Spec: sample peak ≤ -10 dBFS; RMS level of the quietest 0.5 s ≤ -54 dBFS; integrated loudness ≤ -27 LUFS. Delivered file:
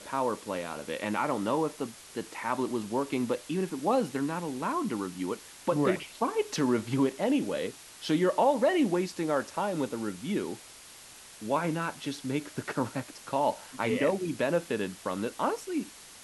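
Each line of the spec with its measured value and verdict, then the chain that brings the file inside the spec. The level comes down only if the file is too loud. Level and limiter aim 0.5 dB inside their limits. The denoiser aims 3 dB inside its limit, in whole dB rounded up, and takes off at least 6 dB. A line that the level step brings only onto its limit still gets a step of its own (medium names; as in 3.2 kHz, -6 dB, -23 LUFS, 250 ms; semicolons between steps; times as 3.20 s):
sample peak -12.5 dBFS: pass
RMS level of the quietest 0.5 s -50 dBFS: fail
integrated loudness -30.5 LUFS: pass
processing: noise reduction 7 dB, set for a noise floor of -50 dBFS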